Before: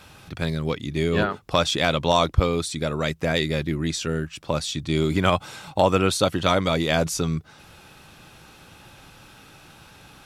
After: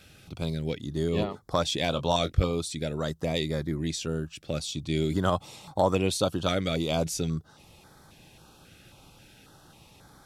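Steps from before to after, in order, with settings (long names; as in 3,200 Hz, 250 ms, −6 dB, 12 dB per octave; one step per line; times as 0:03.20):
0:01.90–0:02.51: double-tracking delay 22 ms −10 dB
notch on a step sequencer 3.7 Hz 980–2,700 Hz
level −4.5 dB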